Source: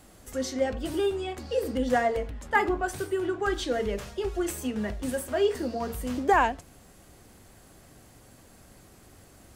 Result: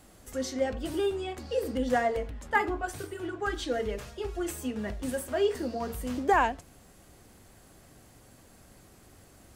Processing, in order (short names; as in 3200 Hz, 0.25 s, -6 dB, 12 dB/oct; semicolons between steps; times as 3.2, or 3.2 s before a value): 2.58–4.87 notch comb 190 Hz; gain -2 dB